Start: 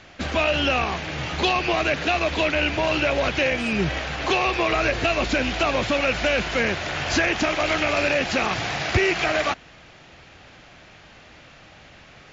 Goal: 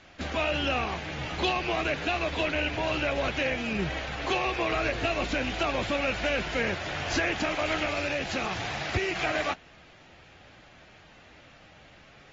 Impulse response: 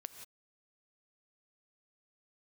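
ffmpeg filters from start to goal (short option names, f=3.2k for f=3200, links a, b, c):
-filter_complex "[0:a]asettb=1/sr,asplit=3[a][b][c];[a]atrim=end=7.864[d];[b]atrim=start=7.86:end=9.15,asetpts=PTS-STARTPTS,afade=t=in:d=0.004:c=qsin,afade=t=out:st=1.286:d=0.004:c=qsin,acrossover=split=190|3000[e][f][g];[f]acompressor=threshold=-27dB:ratio=1.5[h];[e][h][g]amix=inputs=3:normalize=0[i];[c]atrim=start=9.146[j];[d][i]acrossfade=d=0.004:c1=hsin:c2=qsin[k];[k][j]acrossfade=d=0.004:c1=qsin:c2=hsin,volume=-7.5dB" -ar 48000 -c:a aac -b:a 24k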